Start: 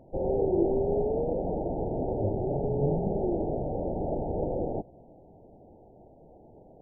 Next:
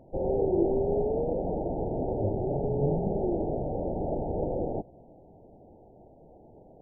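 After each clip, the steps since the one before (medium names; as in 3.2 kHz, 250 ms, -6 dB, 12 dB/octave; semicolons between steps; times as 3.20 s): no audible change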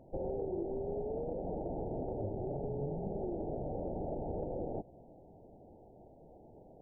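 compression 6:1, threshold -31 dBFS, peak gain reduction 11 dB; trim -3.5 dB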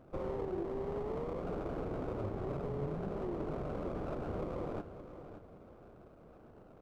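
comb filter that takes the minimum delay 0.37 ms; feedback delay 571 ms, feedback 32%, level -11.5 dB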